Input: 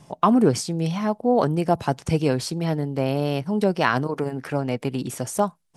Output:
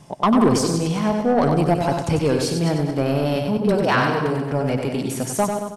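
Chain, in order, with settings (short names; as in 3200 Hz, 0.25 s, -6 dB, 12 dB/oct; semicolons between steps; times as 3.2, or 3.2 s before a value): regenerating reverse delay 0.112 s, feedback 51%, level -8.5 dB; 3.57–4.52 dispersion highs, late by 76 ms, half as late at 350 Hz; soft clip -13.5 dBFS, distortion -15 dB; feedback echo 95 ms, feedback 30%, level -6 dB; gain +3 dB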